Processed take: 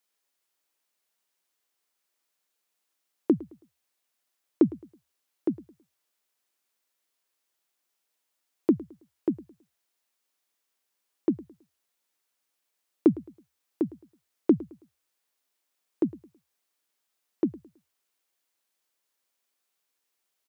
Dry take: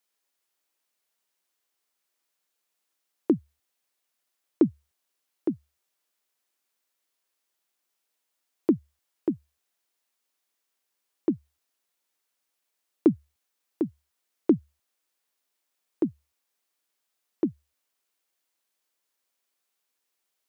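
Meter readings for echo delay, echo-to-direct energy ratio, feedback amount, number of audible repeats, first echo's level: 108 ms, -19.5 dB, 32%, 2, -20.0 dB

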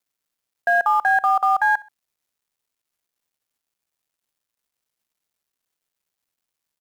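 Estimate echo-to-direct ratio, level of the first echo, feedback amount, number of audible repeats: -21.5 dB, -22.0 dB, 34%, 2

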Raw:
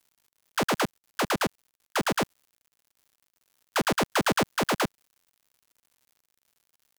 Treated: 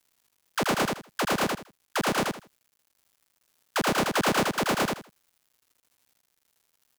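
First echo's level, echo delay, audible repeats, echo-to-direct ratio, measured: -3.0 dB, 80 ms, 3, -3.0 dB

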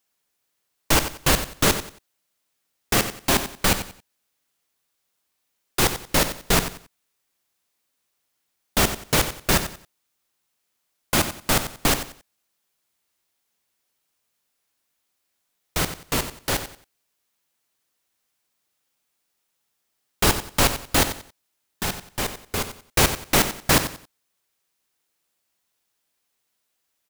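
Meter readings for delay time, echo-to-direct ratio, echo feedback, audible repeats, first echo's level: 91 ms, -10.5 dB, 27%, 3, -11.0 dB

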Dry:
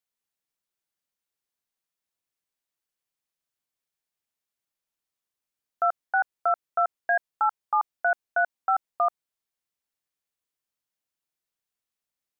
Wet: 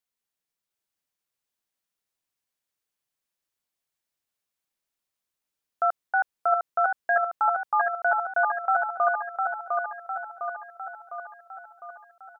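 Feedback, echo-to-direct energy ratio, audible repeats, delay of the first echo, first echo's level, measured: 56%, -2.5 dB, 7, 705 ms, -4.0 dB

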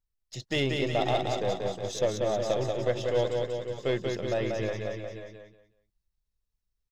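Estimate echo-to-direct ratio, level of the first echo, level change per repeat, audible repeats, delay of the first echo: -1.5 dB, -4.0 dB, no regular repeats, 5, 186 ms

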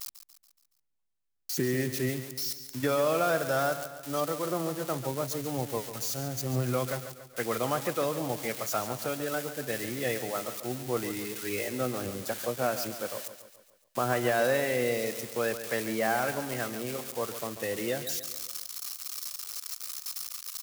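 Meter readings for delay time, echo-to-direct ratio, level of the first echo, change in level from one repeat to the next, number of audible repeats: 141 ms, -10.0 dB, -11.5 dB, -6.0 dB, 5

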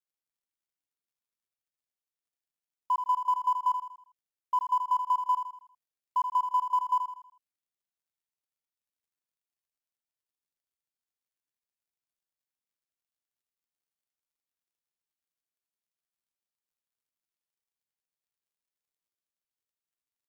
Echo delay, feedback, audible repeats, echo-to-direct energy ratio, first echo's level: 80 ms, 42%, 4, -6.5 dB, -7.5 dB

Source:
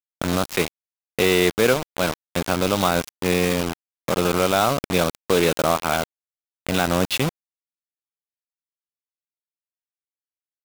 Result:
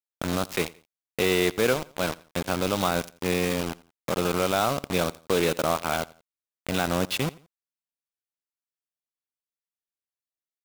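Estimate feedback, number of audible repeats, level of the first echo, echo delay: 34%, 2, -22.0 dB, 86 ms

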